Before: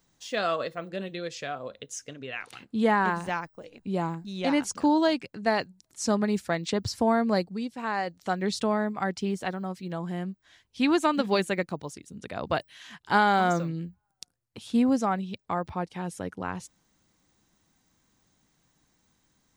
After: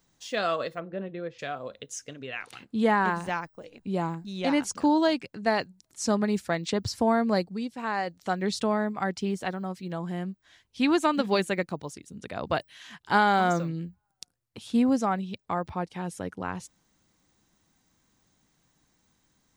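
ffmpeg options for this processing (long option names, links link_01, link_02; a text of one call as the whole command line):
ffmpeg -i in.wav -filter_complex "[0:a]asplit=3[link_01][link_02][link_03];[link_01]afade=type=out:start_time=0.79:duration=0.02[link_04];[link_02]lowpass=1500,afade=type=in:start_time=0.79:duration=0.02,afade=type=out:start_time=1.38:duration=0.02[link_05];[link_03]afade=type=in:start_time=1.38:duration=0.02[link_06];[link_04][link_05][link_06]amix=inputs=3:normalize=0" out.wav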